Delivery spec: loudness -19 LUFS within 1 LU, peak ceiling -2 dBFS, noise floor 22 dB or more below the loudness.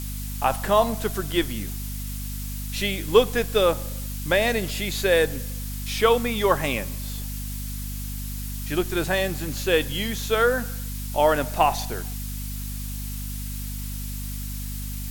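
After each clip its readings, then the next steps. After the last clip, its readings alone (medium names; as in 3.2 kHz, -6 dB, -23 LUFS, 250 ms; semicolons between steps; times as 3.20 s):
hum 50 Hz; highest harmonic 250 Hz; hum level -30 dBFS; noise floor -31 dBFS; noise floor target -48 dBFS; loudness -25.5 LUFS; peak level -3.0 dBFS; loudness target -19.0 LUFS
-> hum notches 50/100/150/200/250 Hz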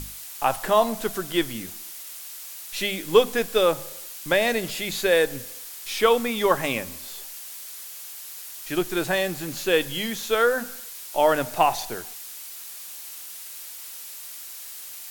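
hum not found; noise floor -39 dBFS; noise floor target -47 dBFS
-> noise reduction 8 dB, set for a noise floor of -39 dBFS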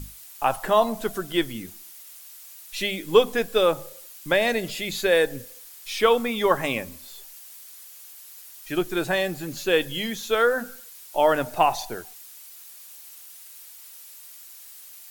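noise floor -45 dBFS; noise floor target -46 dBFS
-> noise reduction 6 dB, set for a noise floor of -45 dBFS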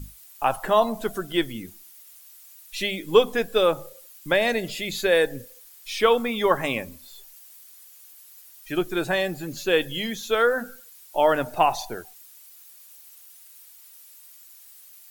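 noise floor -49 dBFS; loudness -24.0 LUFS; peak level -3.0 dBFS; loudness target -19.0 LUFS
-> trim +5 dB; peak limiter -2 dBFS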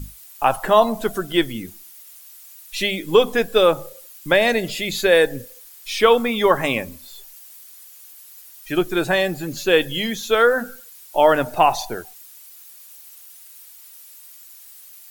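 loudness -19.0 LUFS; peak level -2.0 dBFS; noise floor -44 dBFS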